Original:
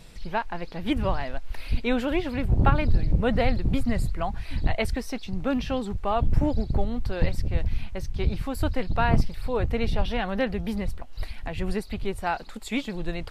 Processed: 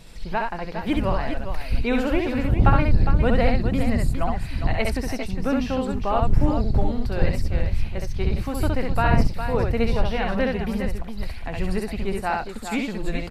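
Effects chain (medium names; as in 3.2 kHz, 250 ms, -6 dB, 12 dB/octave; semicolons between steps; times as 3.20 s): on a send: multi-tap echo 66/408 ms -3/-8.5 dB; on the sum: dynamic bell 3.4 kHz, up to -7 dB, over -55 dBFS, Q 4.9; trim +1.5 dB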